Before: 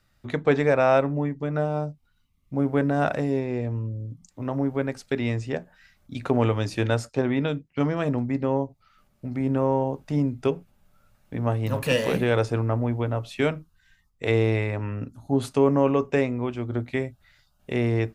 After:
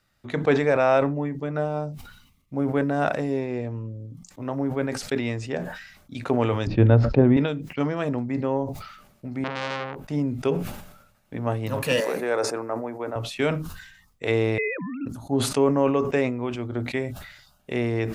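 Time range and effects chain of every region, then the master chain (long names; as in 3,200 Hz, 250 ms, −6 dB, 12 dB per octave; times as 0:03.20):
0:06.67–0:07.37: low-pass filter 4,200 Hz 24 dB per octave + spectral tilt −4.5 dB per octave
0:09.44–0:10.08: parametric band 5,700 Hz −9 dB 2.3 octaves + saturating transformer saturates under 2,200 Hz
0:12.00–0:13.16: high-pass filter 370 Hz + parametric band 3,100 Hz −14.5 dB 0.6 octaves
0:14.58–0:15.06: three sine waves on the formant tracks + notch comb filter 560 Hz
whole clip: low-shelf EQ 110 Hz −9 dB; level that may fall only so fast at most 65 dB per second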